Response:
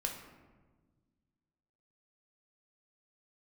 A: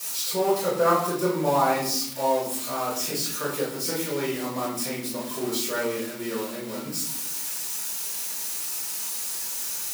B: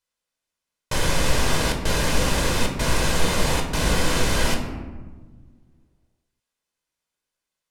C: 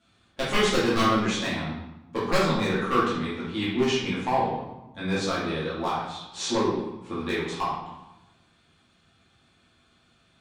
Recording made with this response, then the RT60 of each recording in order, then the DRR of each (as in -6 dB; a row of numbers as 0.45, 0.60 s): B; 0.65, 1.4, 0.95 s; -9.5, 1.5, -10.0 dB